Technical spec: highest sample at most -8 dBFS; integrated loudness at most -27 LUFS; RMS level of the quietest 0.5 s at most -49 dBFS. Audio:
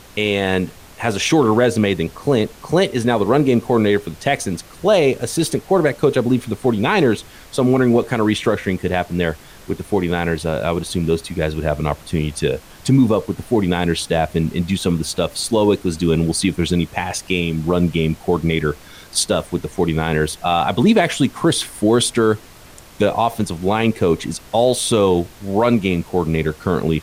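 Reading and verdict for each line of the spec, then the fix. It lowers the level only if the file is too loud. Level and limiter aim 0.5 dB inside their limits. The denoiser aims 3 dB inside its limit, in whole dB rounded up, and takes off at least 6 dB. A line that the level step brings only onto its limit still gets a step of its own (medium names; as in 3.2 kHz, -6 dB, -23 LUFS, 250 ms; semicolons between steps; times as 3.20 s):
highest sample -4.5 dBFS: fail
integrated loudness -18.5 LUFS: fail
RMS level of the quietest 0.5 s -42 dBFS: fail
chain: trim -9 dB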